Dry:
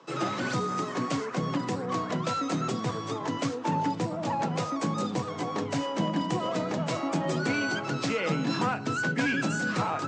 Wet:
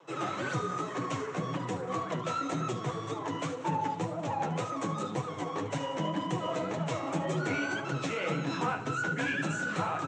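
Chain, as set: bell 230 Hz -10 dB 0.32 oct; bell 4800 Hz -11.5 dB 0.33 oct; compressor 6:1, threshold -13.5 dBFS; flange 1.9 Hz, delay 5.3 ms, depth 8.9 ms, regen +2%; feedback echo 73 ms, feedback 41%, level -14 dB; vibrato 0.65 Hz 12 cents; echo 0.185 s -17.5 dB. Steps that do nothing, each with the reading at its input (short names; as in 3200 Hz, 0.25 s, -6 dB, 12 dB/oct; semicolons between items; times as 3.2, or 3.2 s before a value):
compressor, threshold -13.5 dBFS: input peak -15.5 dBFS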